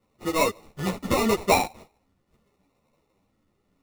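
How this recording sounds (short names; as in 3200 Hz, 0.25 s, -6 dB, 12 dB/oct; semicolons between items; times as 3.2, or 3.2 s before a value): phasing stages 4, 0.78 Hz, lowest notch 640–1800 Hz; aliases and images of a low sample rate 1600 Hz, jitter 0%; a shimmering, thickened sound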